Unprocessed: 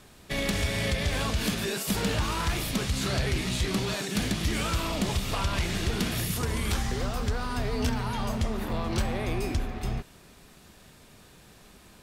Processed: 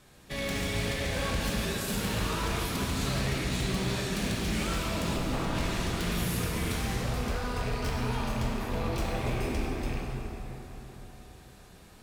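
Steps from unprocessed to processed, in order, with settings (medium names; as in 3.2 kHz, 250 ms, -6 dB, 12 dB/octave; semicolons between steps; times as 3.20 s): rattle on loud lows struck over -27 dBFS, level -25 dBFS; 5.14–5.55 s: tilt shelf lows +7 dB, about 1.1 kHz; wavefolder -23 dBFS; plate-style reverb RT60 4.2 s, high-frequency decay 0.55×, DRR -3 dB; trim -6 dB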